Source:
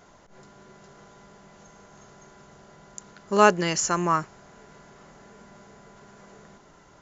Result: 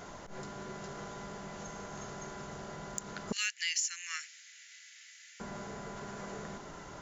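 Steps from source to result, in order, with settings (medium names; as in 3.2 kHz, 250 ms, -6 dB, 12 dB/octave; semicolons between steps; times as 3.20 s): 3.32–5.40 s: steep high-pass 1.9 kHz 48 dB/octave; compression 4:1, threshold -39 dBFS, peak gain reduction 14 dB; saturation -23.5 dBFS, distortion -27 dB; trim +7 dB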